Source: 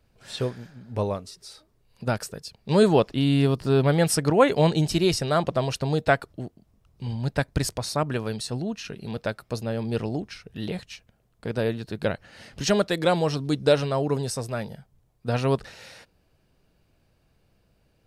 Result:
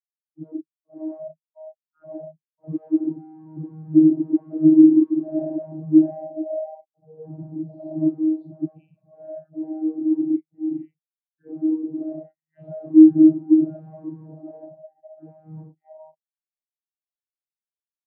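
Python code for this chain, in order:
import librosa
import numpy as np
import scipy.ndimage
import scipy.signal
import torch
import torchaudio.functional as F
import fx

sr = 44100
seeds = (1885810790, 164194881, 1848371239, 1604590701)

p1 = fx.spec_blur(x, sr, span_ms=234.0)
p2 = fx.rider(p1, sr, range_db=4, speed_s=0.5)
p3 = p1 + F.gain(torch.from_numpy(p2), -3.0).numpy()
p4 = fx.env_phaser(p3, sr, low_hz=440.0, high_hz=1700.0, full_db=-22.0)
p5 = fx.air_absorb(p4, sr, metres=140.0)
p6 = p5 + fx.echo_split(p5, sr, split_hz=360.0, low_ms=140, high_ms=547, feedback_pct=52, wet_db=-12.5, dry=0)
p7 = fx.noise_reduce_blind(p6, sr, reduce_db=24)
p8 = p7 + 0.85 * np.pad(p7, (int(3.1 * sr / 1000.0), 0))[:len(p7)]
p9 = fx.fuzz(p8, sr, gain_db=44.0, gate_db=-49.0)
p10 = fx.vocoder(p9, sr, bands=32, carrier='saw', carrier_hz=157.0)
p11 = fx.spectral_expand(p10, sr, expansion=2.5)
y = F.gain(torch.from_numpy(p11), -1.0).numpy()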